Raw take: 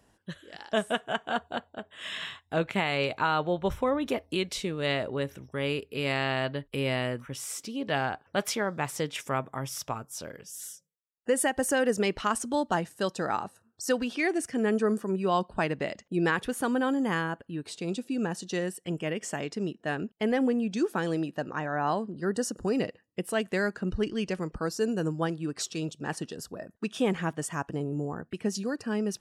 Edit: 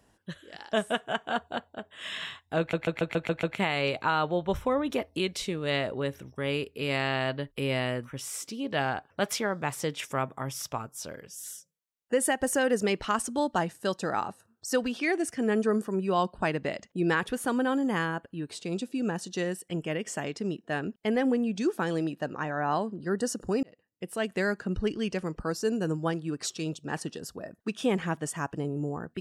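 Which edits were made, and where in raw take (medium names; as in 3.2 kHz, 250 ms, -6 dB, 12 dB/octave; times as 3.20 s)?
2.59 s: stutter 0.14 s, 7 plays
22.79–23.52 s: fade in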